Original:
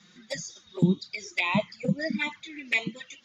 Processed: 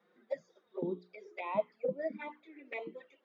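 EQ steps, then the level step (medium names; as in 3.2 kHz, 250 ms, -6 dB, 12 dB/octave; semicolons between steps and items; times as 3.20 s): ladder band-pass 560 Hz, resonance 45%; hum notches 60/120/180/240/300/360/420 Hz; +7.0 dB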